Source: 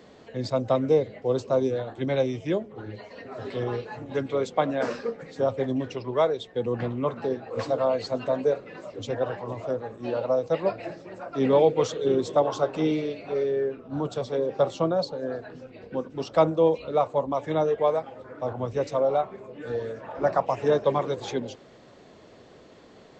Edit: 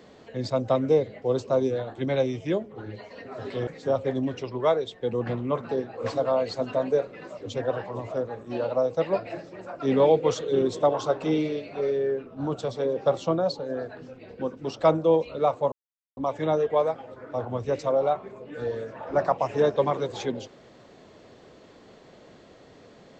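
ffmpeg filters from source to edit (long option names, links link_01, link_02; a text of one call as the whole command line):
ffmpeg -i in.wav -filter_complex "[0:a]asplit=3[link_01][link_02][link_03];[link_01]atrim=end=3.672[link_04];[link_02]atrim=start=5.198:end=17.25,asetpts=PTS-STARTPTS,afade=type=out:start_time=12.048:duration=0.004:curve=hsin,apad=pad_dur=0.45[link_05];[link_03]atrim=start=17.25,asetpts=PTS-STARTPTS,afade=type=in:duration=0.004:curve=hsin[link_06];[link_05][link_06]concat=n=2:v=0:a=1[link_07];[link_04][link_07]acrossfade=duration=0.004:curve1=hsin:curve2=hsin" out.wav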